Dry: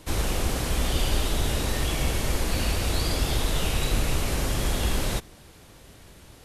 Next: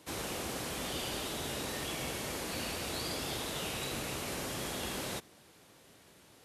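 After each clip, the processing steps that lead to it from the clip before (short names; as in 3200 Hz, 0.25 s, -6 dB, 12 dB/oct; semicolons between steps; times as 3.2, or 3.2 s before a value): Bessel high-pass 190 Hz, order 2; gain -7.5 dB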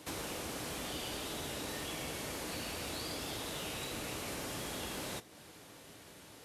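compressor 2.5:1, threshold -47 dBFS, peak gain reduction 9 dB; hard clip -38 dBFS, distortion -28 dB; FDN reverb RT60 0.35 s, high-frequency decay 1×, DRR 13 dB; gain +5 dB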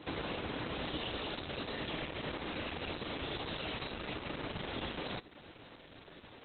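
gain +4.5 dB; Opus 8 kbps 48000 Hz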